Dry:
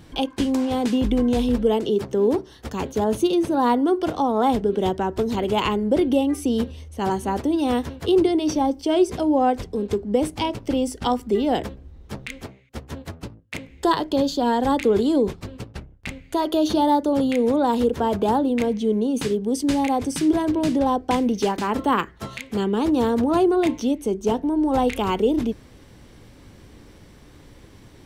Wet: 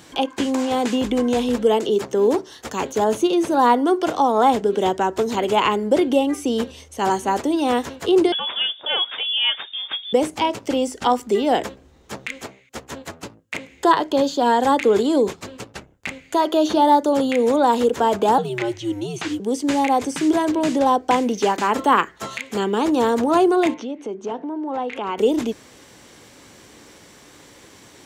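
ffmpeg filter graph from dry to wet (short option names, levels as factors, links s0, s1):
-filter_complex "[0:a]asettb=1/sr,asplit=3[s0][s1][s2];[s0]atrim=end=8.324[s3];[s1]atrim=start=8.32:end=10.13,asetpts=PTS-STARTPTS,afade=t=in:d=0.004:c=qsin,afade=t=out:st=1.806:d=0.004:c=qsin,tiltshelf=f=1100:g=-8.5,lowpass=f=3100:t=q:w=0.5098,lowpass=f=3100:t=q:w=0.6013,lowpass=f=3100:t=q:w=0.9,lowpass=f=3100:t=q:w=2.563,afreqshift=-3700[s4];[s2]atrim=start=10.126[s5];[s3][s4]acrossfade=d=0.004:c1=hsin:c2=qsin[s6];[s6][s5]acrossfade=d=0.004:c1=qsin:c2=hsin,asettb=1/sr,asplit=3[s7][s8][s9];[s7]atrim=end=18.384[s10];[s8]atrim=start=18.38:end=19.4,asetpts=PTS-STARTPTS,afade=t=in:d=0.004:c=qsin,afade=t=out:st=1.016:d=0.004:c=qsin,acrossover=split=5600[s11][s12];[s12]acompressor=threshold=0.002:ratio=4:attack=1:release=60[s13];[s11][s13]amix=inputs=2:normalize=0,afreqshift=-110,lowshelf=f=170:g=-10.5[s14];[s9]atrim=start=19.396[s15];[s10][s14]acrossfade=d=0.004:c1=hsin:c2=qsin[s16];[s16][s15]acrossfade=d=0.004:c1=qsin:c2=hsin,asettb=1/sr,asplit=3[s17][s18][s19];[s17]atrim=end=23.744[s20];[s18]atrim=start=23.74:end=25.18,asetpts=PTS-STARTPTS,afade=t=in:d=0.004:c=qsin,afade=t=out:st=1.436:d=0.004:c=qsin,highpass=150,lowpass=2400,acompressor=threshold=0.0355:ratio=2.5:attack=3.2:release=140:knee=1:detection=peak[s21];[s19]atrim=start=25.176[s22];[s20][s21]acrossfade=d=0.004:c1=hsin:c2=qsin[s23];[s23][s22]acrossfade=d=0.004:c1=qsin:c2=hsin,highpass=f=570:p=1,acrossover=split=2900[s24][s25];[s25]acompressor=threshold=0.00708:ratio=4:attack=1:release=60[s26];[s24][s26]amix=inputs=2:normalize=0,equalizer=f=7000:t=o:w=0.44:g=8,volume=2.24"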